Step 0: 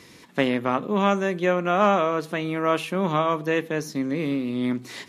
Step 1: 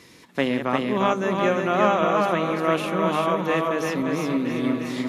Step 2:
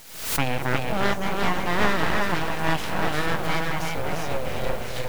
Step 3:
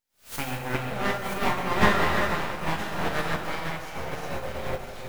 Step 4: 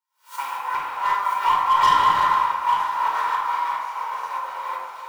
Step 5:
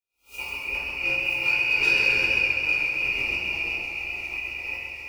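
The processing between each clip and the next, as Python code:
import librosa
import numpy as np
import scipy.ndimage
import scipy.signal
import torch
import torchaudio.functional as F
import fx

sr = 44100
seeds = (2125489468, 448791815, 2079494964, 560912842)

y1 = fx.reverse_delay_fb(x, sr, ms=503, feedback_pct=62, wet_db=-10.0)
y1 = fx.hum_notches(y1, sr, base_hz=50, count=4)
y1 = y1 + 10.0 ** (-3.0 / 20.0) * np.pad(y1, (int(350 * sr / 1000.0), 0))[:len(y1)]
y1 = y1 * librosa.db_to_amplitude(-1.0)
y2 = np.abs(y1)
y2 = fx.quant_dither(y2, sr, seeds[0], bits=8, dither='triangular')
y2 = fx.pre_swell(y2, sr, db_per_s=75.0)
y3 = y2 + 10.0 ** (-9.0 / 20.0) * np.pad(y2, (int(973 * sr / 1000.0), 0))[:len(y2)]
y3 = fx.rev_fdn(y3, sr, rt60_s=2.3, lf_ratio=0.8, hf_ratio=0.65, size_ms=78.0, drr_db=-2.5)
y3 = fx.upward_expand(y3, sr, threshold_db=-42.0, expansion=2.5)
y4 = fx.highpass_res(y3, sr, hz=1000.0, q=11.0)
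y4 = np.clip(y4, -10.0 ** (-12.0 / 20.0), 10.0 ** (-12.0 / 20.0))
y4 = fx.room_shoebox(y4, sr, seeds[1], volume_m3=2500.0, walls='furnished', distance_m=4.6)
y4 = y4 * librosa.db_to_amplitude(-7.0)
y5 = fx.band_shuffle(y4, sr, order='2143')
y5 = fx.doubler(y5, sr, ms=17.0, db=-3.5)
y5 = fx.echo_warbled(y5, sr, ms=132, feedback_pct=69, rate_hz=2.8, cents=50, wet_db=-7.0)
y5 = y5 * librosa.db_to_amplitude(-6.5)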